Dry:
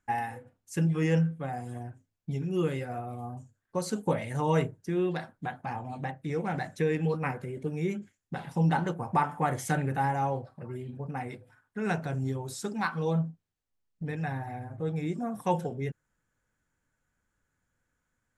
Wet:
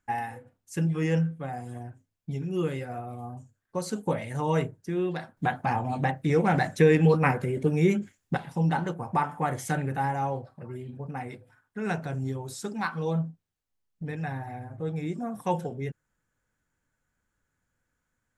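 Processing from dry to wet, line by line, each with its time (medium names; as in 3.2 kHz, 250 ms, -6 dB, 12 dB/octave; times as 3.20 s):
5.37–8.37 s: gain +8.5 dB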